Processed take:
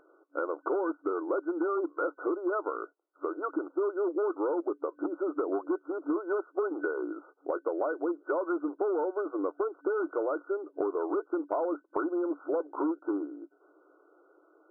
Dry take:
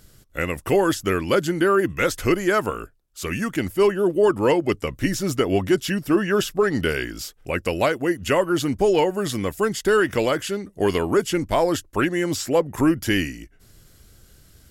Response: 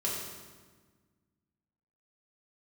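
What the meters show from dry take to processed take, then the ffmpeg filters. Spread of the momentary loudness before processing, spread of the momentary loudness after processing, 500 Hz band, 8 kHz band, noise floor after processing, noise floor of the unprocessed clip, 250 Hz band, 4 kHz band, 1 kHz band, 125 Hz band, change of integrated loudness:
8 LU, 6 LU, -9.5 dB, under -40 dB, -68 dBFS, -54 dBFS, -10.0 dB, under -40 dB, -9.5 dB, under -40 dB, -10.5 dB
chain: -af "volume=6.68,asoftclip=hard,volume=0.15,afftfilt=real='re*between(b*sr/4096,280,1500)':imag='im*between(b*sr/4096,280,1500)':win_size=4096:overlap=0.75,acompressor=threshold=0.0316:ratio=6,volume=1.26"

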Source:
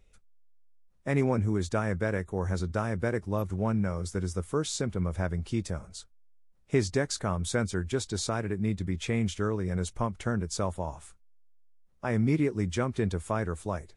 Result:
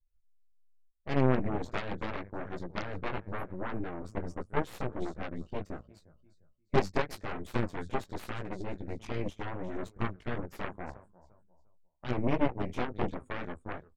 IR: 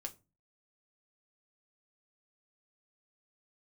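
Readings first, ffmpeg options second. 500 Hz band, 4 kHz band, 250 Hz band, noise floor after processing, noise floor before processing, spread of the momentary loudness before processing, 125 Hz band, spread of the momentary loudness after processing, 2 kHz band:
-4.5 dB, -8.0 dB, -5.5 dB, -66 dBFS, -60 dBFS, 6 LU, -8.0 dB, 11 LU, -3.0 dB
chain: -af "flanger=delay=16:depth=4.3:speed=0.82,afftdn=nr=24:nf=-49,highshelf=f=6600:g=-7,aecho=1:1:352|704|1056:0.133|0.0373|0.0105,aeval=exprs='0.158*(cos(1*acos(clip(val(0)/0.158,-1,1)))-cos(1*PI/2))+0.0562*(cos(4*acos(clip(val(0)/0.158,-1,1)))-cos(4*PI/2))+0.00501*(cos(5*acos(clip(val(0)/0.158,-1,1)))-cos(5*PI/2))+0.0355*(cos(7*acos(clip(val(0)/0.158,-1,1)))-cos(7*PI/2))+0.0112*(cos(8*acos(clip(val(0)/0.158,-1,1)))-cos(8*PI/2))':c=same,aemphasis=mode=reproduction:type=cd"

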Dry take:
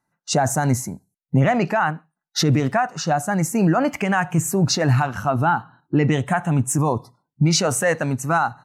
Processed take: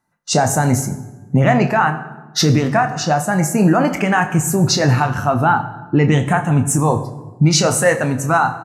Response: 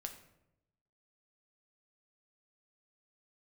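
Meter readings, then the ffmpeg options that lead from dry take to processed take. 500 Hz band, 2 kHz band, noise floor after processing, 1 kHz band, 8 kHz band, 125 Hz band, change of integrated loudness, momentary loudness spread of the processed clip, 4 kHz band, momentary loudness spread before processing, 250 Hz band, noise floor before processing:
+4.5 dB, +4.5 dB, -41 dBFS, +4.5 dB, +4.5 dB, +4.5 dB, +4.5 dB, 6 LU, +4.5 dB, 6 LU, +4.5 dB, -84 dBFS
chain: -filter_complex "[0:a]asplit=2[s0][s1];[s1]adelay=28,volume=0.299[s2];[s0][s2]amix=inputs=2:normalize=0,asplit=2[s3][s4];[1:a]atrim=start_sample=2205,asetrate=28224,aresample=44100[s5];[s4][s5]afir=irnorm=-1:irlink=0,volume=1.5[s6];[s3][s6]amix=inputs=2:normalize=0,volume=0.708"

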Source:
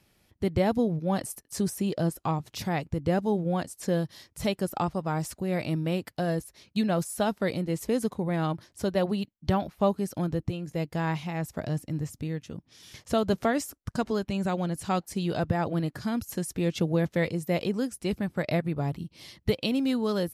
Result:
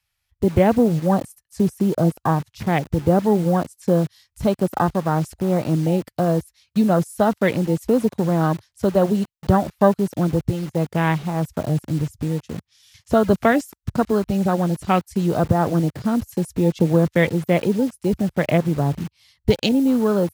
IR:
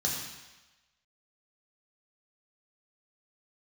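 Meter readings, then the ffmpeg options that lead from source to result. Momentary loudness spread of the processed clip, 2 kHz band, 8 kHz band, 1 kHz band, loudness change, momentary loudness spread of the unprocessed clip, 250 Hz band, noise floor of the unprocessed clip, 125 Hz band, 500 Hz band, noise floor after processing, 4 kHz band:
7 LU, +7.5 dB, +1.0 dB, +9.0 dB, +9.0 dB, 7 LU, +9.0 dB, -70 dBFS, +9.0 dB, +9.0 dB, -76 dBFS, +3.5 dB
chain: -filter_complex "[0:a]afwtdn=0.0178,acrossover=split=110|840|2100[s0][s1][s2][s3];[s1]acrusher=bits=7:mix=0:aa=0.000001[s4];[s3]dynaudnorm=f=440:g=17:m=1.88[s5];[s0][s4][s2][s5]amix=inputs=4:normalize=0,volume=2.82"

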